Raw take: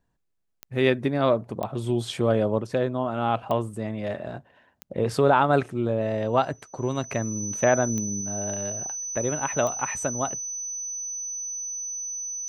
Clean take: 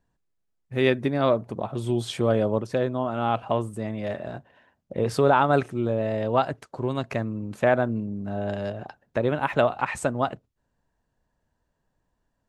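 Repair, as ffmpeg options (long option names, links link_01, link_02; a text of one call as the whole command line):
ffmpeg -i in.wav -af "adeclick=threshold=4,bandreject=frequency=6000:width=30,asetnsamples=nb_out_samples=441:pad=0,asendcmd='8.21 volume volume 3.5dB',volume=0dB" out.wav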